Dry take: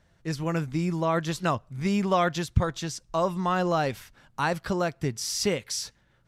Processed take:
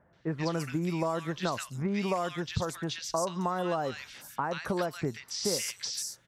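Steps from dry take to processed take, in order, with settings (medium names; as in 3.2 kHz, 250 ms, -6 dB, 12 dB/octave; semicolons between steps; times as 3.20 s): high-pass 260 Hz 6 dB/octave; compression, threshold -32 dBFS, peak gain reduction 12.5 dB; three bands offset in time lows, mids, highs 130/270 ms, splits 1.6/5.8 kHz; trim +5 dB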